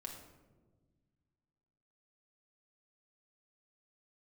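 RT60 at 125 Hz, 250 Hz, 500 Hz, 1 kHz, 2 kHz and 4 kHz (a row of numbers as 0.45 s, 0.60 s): 2.4 s, 2.3 s, 1.7 s, 1.1 s, 0.80 s, 0.60 s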